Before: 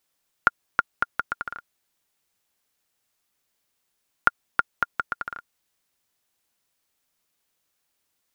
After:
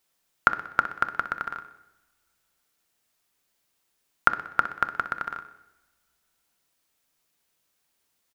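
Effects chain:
repeating echo 62 ms, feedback 48%, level −13 dB
on a send at −11 dB: convolution reverb RT60 1.0 s, pre-delay 3 ms
on the sum: level +1 dB

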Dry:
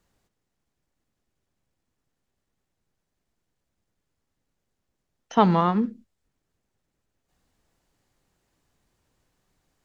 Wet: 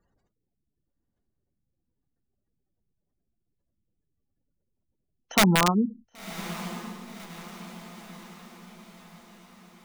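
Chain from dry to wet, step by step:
gate on every frequency bin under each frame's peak −20 dB strong
wrap-around overflow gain 11 dB
feedback delay with all-pass diffusion 1,048 ms, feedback 53%, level −14 dB

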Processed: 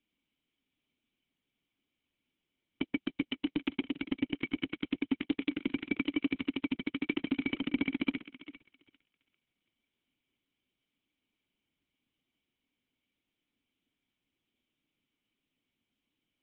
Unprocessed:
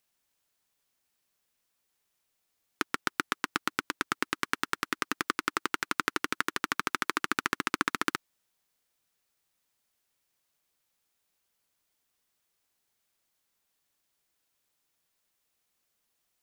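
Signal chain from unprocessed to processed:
formant resonators in series i
feedback echo with a high-pass in the loop 398 ms, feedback 27%, high-pass 530 Hz, level −13 dB
in parallel at −4 dB: soft clipping −37 dBFS, distortion −12 dB
on the sum: level +8 dB
Opus 6 kbit/s 48,000 Hz

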